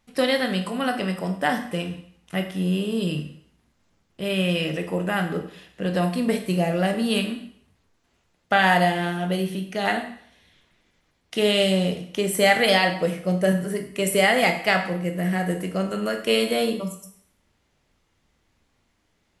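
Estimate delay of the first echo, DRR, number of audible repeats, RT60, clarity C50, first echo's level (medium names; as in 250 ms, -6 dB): no echo, 5.0 dB, no echo, 0.65 s, 9.0 dB, no echo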